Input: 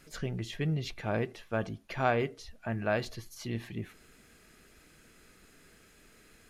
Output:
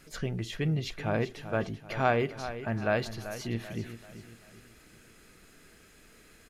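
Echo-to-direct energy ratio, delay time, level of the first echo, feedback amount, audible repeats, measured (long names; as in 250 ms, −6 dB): −11.0 dB, 387 ms, −12.0 dB, 42%, 4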